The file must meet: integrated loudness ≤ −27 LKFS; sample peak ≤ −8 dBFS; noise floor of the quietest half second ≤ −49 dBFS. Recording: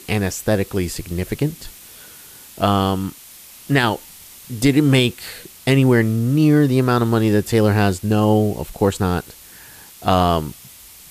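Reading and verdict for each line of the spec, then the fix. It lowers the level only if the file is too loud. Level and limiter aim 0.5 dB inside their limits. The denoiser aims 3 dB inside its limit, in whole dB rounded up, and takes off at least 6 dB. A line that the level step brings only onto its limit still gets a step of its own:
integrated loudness −18.5 LKFS: out of spec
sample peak −4.0 dBFS: out of spec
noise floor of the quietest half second −42 dBFS: out of spec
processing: level −9 dB

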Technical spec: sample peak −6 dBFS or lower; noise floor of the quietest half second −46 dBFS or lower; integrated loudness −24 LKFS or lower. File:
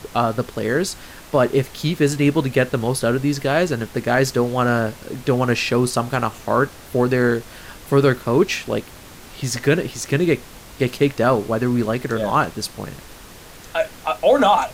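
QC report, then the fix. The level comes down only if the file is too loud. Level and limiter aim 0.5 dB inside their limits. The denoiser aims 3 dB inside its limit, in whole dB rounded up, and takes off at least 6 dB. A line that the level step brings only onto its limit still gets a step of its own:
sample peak −5.0 dBFS: out of spec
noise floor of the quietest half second −41 dBFS: out of spec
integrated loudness −20.0 LKFS: out of spec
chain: broadband denoise 6 dB, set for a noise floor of −41 dBFS
level −4.5 dB

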